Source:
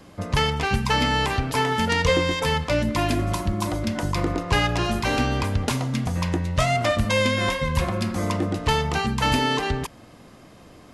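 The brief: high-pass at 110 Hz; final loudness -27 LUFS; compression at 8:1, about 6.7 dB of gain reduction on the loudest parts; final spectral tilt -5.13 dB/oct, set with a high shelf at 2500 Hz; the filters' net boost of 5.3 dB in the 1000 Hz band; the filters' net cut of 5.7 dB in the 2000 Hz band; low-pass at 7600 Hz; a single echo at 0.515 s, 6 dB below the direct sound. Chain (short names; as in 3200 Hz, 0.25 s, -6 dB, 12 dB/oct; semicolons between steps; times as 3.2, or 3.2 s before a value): HPF 110 Hz; LPF 7600 Hz; bell 1000 Hz +9 dB; bell 2000 Hz -7.5 dB; high shelf 2500 Hz -5.5 dB; compressor 8:1, threshold -22 dBFS; echo 0.515 s -6 dB; gain -1 dB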